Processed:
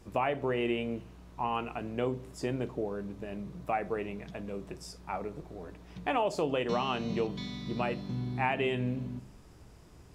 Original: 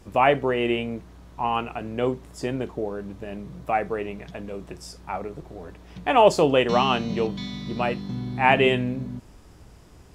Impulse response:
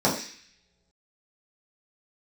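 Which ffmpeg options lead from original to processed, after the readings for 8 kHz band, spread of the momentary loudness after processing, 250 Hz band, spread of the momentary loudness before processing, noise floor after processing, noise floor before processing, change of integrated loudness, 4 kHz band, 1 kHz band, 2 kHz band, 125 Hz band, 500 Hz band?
-9.5 dB, 11 LU, -7.0 dB, 19 LU, -54 dBFS, -49 dBFS, -10.0 dB, -11.0 dB, -10.5 dB, -10.5 dB, -6.0 dB, -10.0 dB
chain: -filter_complex "[0:a]acompressor=threshold=-21dB:ratio=6,asplit=2[a][b];[1:a]atrim=start_sample=2205,asetrate=27342,aresample=44100[c];[b][c]afir=irnorm=-1:irlink=0,volume=-35dB[d];[a][d]amix=inputs=2:normalize=0,volume=-5.5dB"

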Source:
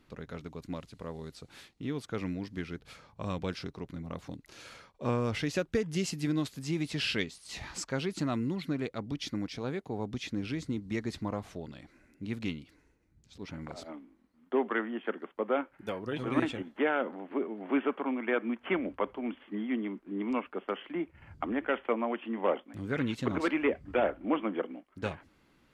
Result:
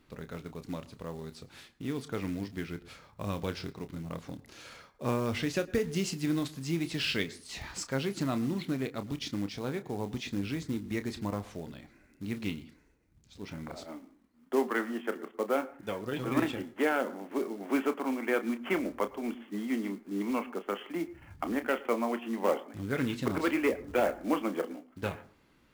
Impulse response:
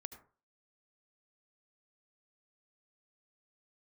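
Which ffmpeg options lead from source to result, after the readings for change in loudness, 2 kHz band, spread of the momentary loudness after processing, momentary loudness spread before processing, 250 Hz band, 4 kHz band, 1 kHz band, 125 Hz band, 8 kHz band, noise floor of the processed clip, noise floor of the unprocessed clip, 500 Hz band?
+0.5 dB, +0.5 dB, 13 LU, 13 LU, +0.5 dB, +0.5 dB, +0.5 dB, 0.0 dB, +2.0 dB, -65 dBFS, -67 dBFS, +0.5 dB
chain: -filter_complex "[0:a]acrusher=bits=5:mode=log:mix=0:aa=0.000001,asplit=2[a][b];[1:a]atrim=start_sample=2205,adelay=30[c];[b][c]afir=irnorm=-1:irlink=0,volume=-6dB[d];[a][d]amix=inputs=2:normalize=0"

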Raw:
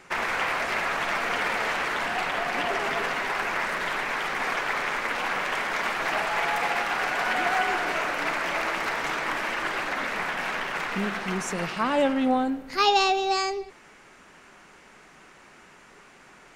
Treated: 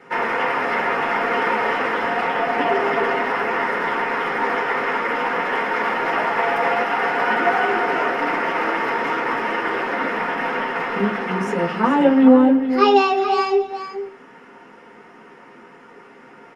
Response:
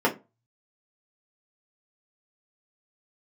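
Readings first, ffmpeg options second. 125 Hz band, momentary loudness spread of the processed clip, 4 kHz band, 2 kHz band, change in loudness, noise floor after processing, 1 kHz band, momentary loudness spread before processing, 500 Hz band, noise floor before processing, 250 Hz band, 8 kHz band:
+6.0 dB, 7 LU, -1.0 dB, +4.0 dB, +6.5 dB, -45 dBFS, +7.0 dB, 5 LU, +10.0 dB, -52 dBFS, +12.0 dB, n/a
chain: -filter_complex "[0:a]aecho=1:1:430:0.316[a];[1:a]atrim=start_sample=2205[b];[a][b]afir=irnorm=-1:irlink=0,volume=-9.5dB"

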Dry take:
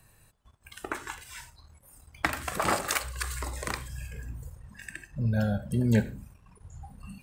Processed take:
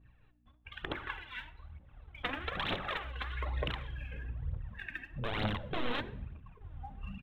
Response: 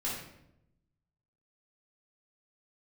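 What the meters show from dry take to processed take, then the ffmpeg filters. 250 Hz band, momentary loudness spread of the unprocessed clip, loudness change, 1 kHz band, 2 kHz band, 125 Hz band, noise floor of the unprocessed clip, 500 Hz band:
-11.5 dB, 20 LU, -8.0 dB, -6.0 dB, -4.0 dB, -9.5 dB, -62 dBFS, -6.0 dB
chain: -filter_complex "[0:a]agate=range=-33dB:threshold=-52dB:ratio=3:detection=peak,bandreject=f=1k:w=16,aresample=8000,aeval=exprs='(mod(13.3*val(0)+1,2)-1)/13.3':c=same,aresample=44100,acompressor=threshold=-36dB:ratio=4,aeval=exprs='val(0)+0.000398*(sin(2*PI*60*n/s)+sin(2*PI*2*60*n/s)/2+sin(2*PI*3*60*n/s)/3+sin(2*PI*4*60*n/s)/4+sin(2*PI*5*60*n/s)/5)':c=same,bandreject=f=56.19:t=h:w=4,bandreject=f=112.38:t=h:w=4,bandreject=f=168.57:t=h:w=4,bandreject=f=224.76:t=h:w=4,bandreject=f=280.95:t=h:w=4,bandreject=f=337.14:t=h:w=4,bandreject=f=393.33:t=h:w=4,bandreject=f=449.52:t=h:w=4,bandreject=f=505.71:t=h:w=4,bandreject=f=561.9:t=h:w=4,bandreject=f=618.09:t=h:w=4,bandreject=f=674.28:t=h:w=4,bandreject=f=730.47:t=h:w=4,bandreject=f=786.66:t=h:w=4,bandreject=f=842.85:t=h:w=4,bandreject=f=899.04:t=h:w=4,bandreject=f=955.23:t=h:w=4,bandreject=f=1.01142k:t=h:w=4,aphaser=in_gain=1:out_gain=1:delay=4.2:decay=0.62:speed=1.1:type=triangular,asplit=2[a][b];[1:a]atrim=start_sample=2205,adelay=53[c];[b][c]afir=irnorm=-1:irlink=0,volume=-23.5dB[d];[a][d]amix=inputs=2:normalize=0"

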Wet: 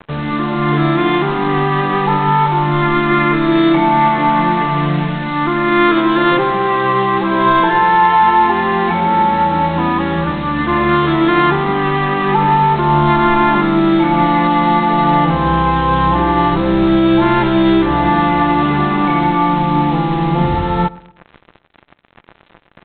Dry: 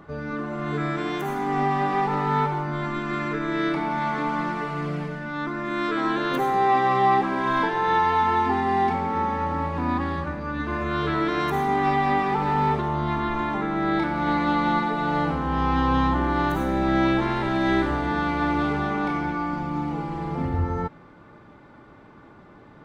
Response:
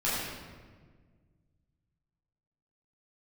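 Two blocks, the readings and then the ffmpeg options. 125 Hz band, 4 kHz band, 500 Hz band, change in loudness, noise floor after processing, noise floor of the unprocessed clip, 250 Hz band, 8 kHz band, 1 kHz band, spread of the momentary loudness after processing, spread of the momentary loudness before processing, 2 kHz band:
+11.0 dB, +12.0 dB, +10.5 dB, +11.0 dB, -50 dBFS, -49 dBFS, +11.5 dB, n/a, +10.5 dB, 4 LU, 8 LU, +9.5 dB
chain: -filter_complex "[0:a]alimiter=limit=-16.5dB:level=0:latency=1:release=264,acontrast=82,aecho=1:1:5.8:0.7,aresample=8000,acrusher=bits=4:mix=0:aa=0.5,aresample=44100,asplit=2[a][b];[b]adelay=118,lowpass=f=1.5k:p=1,volume=-21dB,asplit=2[c][d];[d]adelay=118,lowpass=f=1.5k:p=1,volume=0.45,asplit=2[e][f];[f]adelay=118,lowpass=f=1.5k:p=1,volume=0.45[g];[a][c][e][g]amix=inputs=4:normalize=0,asplit=2[h][i];[1:a]atrim=start_sample=2205,atrim=end_sample=3969[j];[i][j]afir=irnorm=-1:irlink=0,volume=-29.5dB[k];[h][k]amix=inputs=2:normalize=0,volume=4dB"

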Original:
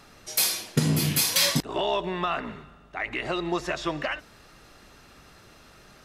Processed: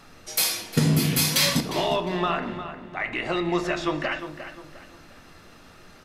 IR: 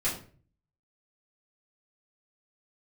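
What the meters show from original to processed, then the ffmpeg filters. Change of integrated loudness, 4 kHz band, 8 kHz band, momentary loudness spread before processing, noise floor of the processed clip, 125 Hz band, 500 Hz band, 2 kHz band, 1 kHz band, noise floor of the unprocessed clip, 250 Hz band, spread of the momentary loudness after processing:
+1.5 dB, +1.0 dB, 0.0 dB, 12 LU, -50 dBFS, +3.0 dB, +2.5 dB, +2.5 dB, +2.0 dB, -53 dBFS, +4.0 dB, 14 LU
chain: -filter_complex "[0:a]asplit=2[a][b];[b]adelay=354,lowpass=f=3.5k:p=1,volume=-10.5dB,asplit=2[c][d];[d]adelay=354,lowpass=f=3.5k:p=1,volume=0.37,asplit=2[e][f];[f]adelay=354,lowpass=f=3.5k:p=1,volume=0.37,asplit=2[g][h];[h]adelay=354,lowpass=f=3.5k:p=1,volume=0.37[i];[a][c][e][g][i]amix=inputs=5:normalize=0,asplit=2[j][k];[1:a]atrim=start_sample=2205,lowpass=4.7k[l];[k][l]afir=irnorm=-1:irlink=0,volume=-12.5dB[m];[j][m]amix=inputs=2:normalize=0"

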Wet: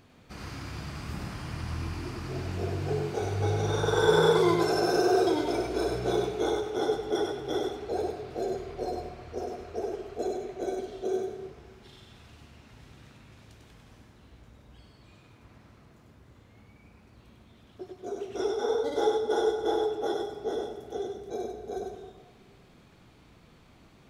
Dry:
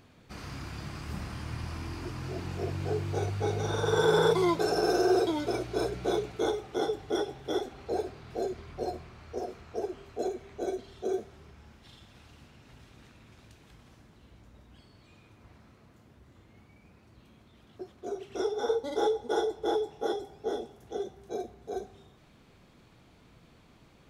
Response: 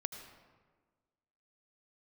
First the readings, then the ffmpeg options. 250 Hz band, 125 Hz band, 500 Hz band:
+2.0 dB, +2.5 dB, +2.0 dB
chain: -filter_complex "[0:a]asplit=2[a][b];[1:a]atrim=start_sample=2205,adelay=98[c];[b][c]afir=irnorm=-1:irlink=0,volume=-2dB[d];[a][d]amix=inputs=2:normalize=0"

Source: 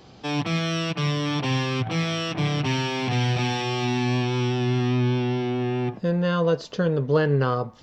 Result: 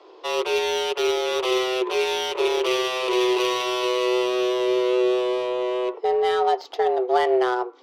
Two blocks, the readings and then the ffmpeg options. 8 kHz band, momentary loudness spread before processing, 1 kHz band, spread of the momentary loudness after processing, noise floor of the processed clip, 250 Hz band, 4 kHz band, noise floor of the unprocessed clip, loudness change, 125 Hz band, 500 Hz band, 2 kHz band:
n/a, 4 LU, +5.5 dB, 4 LU, -47 dBFS, -3.5 dB, +3.5 dB, -48 dBFS, +2.0 dB, under -30 dB, +6.5 dB, +1.0 dB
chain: -af "afreqshift=250,equalizer=f=250:t=o:w=0.67:g=-10,equalizer=f=630:t=o:w=0.67:g=-8,equalizer=f=1.6k:t=o:w=0.67:g=-10,adynamicsmooth=sensitivity=4:basefreq=2.4k,volume=6.5dB"

